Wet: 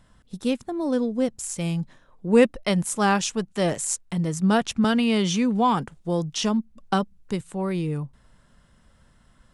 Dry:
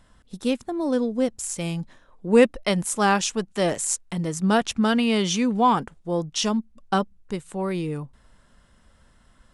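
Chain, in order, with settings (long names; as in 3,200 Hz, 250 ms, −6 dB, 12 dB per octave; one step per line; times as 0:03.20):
parametric band 140 Hz +5.5 dB 1 octave
0:04.84–0:07.41: multiband upward and downward compressor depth 40%
level −1.5 dB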